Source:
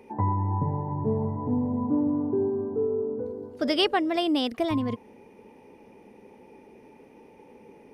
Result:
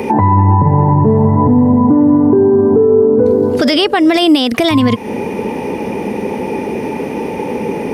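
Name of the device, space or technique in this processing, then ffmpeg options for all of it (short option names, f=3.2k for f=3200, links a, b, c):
mastering chain: -filter_complex "[0:a]highpass=52,equalizer=f=170:t=o:w=0.77:g=3,acrossover=split=1600|5700[a][b][c];[a]acompressor=threshold=-34dB:ratio=4[d];[b]acompressor=threshold=-38dB:ratio=4[e];[c]acompressor=threshold=-50dB:ratio=4[f];[d][e][f]amix=inputs=3:normalize=0,acompressor=threshold=-44dB:ratio=1.5,asoftclip=type=hard:threshold=-26.5dB,alimiter=level_in=32.5dB:limit=-1dB:release=50:level=0:latency=1,volume=-1dB"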